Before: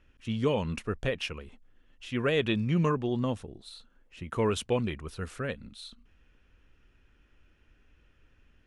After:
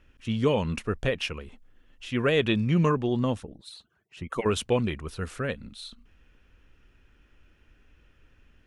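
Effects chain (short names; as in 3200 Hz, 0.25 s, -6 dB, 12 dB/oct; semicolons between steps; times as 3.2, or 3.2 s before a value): 3.4–4.46 median-filter separation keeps percussive; gain +3.5 dB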